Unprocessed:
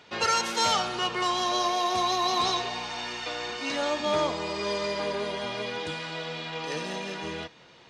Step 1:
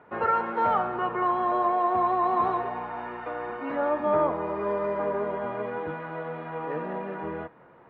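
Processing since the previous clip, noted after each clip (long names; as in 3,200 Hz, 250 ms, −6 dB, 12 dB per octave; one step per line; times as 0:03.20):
low-pass filter 1,500 Hz 24 dB per octave
low-shelf EQ 180 Hz −5 dB
level +3.5 dB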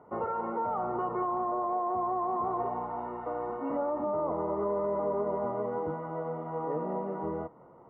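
brickwall limiter −22 dBFS, peak gain reduction 8.5 dB
Savitzky-Golay smoothing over 65 samples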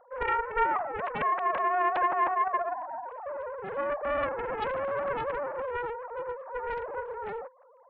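three sine waves on the formant tracks
highs frequency-modulated by the lows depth 0.89 ms
level +2 dB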